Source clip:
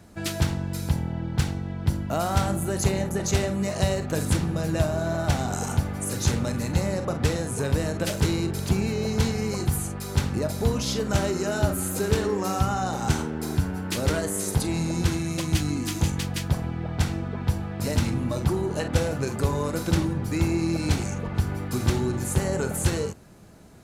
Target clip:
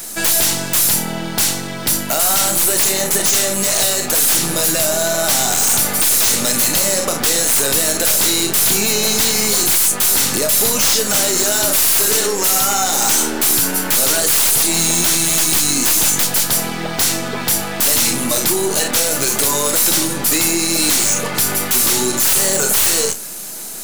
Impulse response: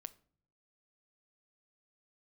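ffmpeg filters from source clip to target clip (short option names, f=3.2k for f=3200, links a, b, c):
-filter_complex "[0:a]highpass=270,highshelf=f=4.6k:g=8.5,acompressor=threshold=-28dB:ratio=6,crystalizer=i=5:c=0,aeval=exprs='0.501*sin(PI/2*4.47*val(0)/0.501)':c=same,aeval=exprs='0.501*(cos(1*acos(clip(val(0)/0.501,-1,1)))-cos(1*PI/2))+0.0398*(cos(6*acos(clip(val(0)/0.501,-1,1)))-cos(6*PI/2))':c=same,asplit=2[a][b];[1:a]atrim=start_sample=2205,adelay=29[c];[b][c]afir=irnorm=-1:irlink=0,volume=-4.5dB[d];[a][d]amix=inputs=2:normalize=0,volume=-5dB"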